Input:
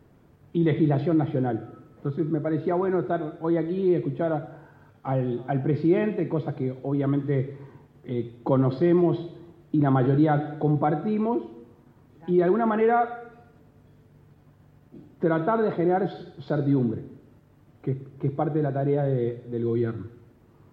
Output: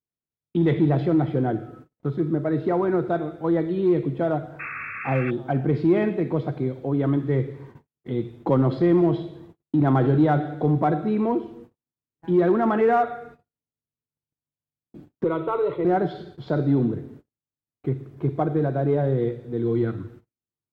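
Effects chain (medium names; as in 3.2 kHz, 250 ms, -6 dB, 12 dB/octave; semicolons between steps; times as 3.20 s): 4.59–5.31 s: painted sound noise 1.1–2.7 kHz -36 dBFS; in parallel at -10.5 dB: hard clipper -19 dBFS, distortion -13 dB; on the sum: gate -44 dBFS, range -45 dB; 15.24–15.85 s: static phaser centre 1.1 kHz, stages 8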